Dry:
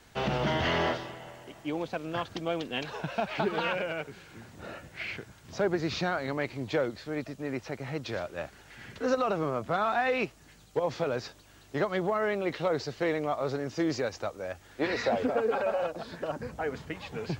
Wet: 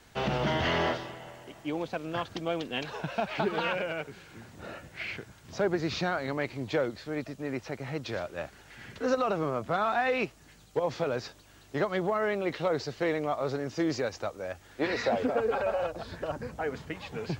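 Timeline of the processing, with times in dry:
0:15.40–0:16.40: low shelf with overshoot 130 Hz +8.5 dB, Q 1.5

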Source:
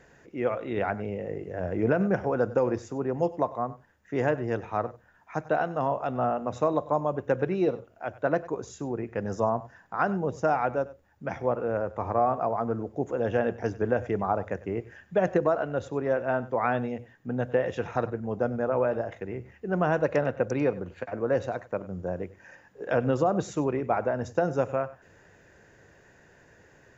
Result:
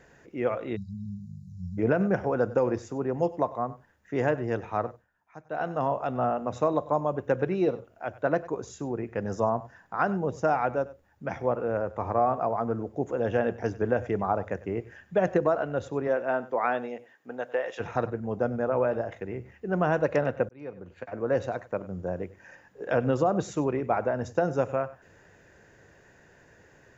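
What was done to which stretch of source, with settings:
0:00.76–0:01.78: time-frequency box erased 220–3,800 Hz
0:04.89–0:05.68: duck −14.5 dB, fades 0.19 s
0:16.07–0:17.79: high-pass filter 200 Hz → 630 Hz
0:20.49–0:21.36: fade in linear

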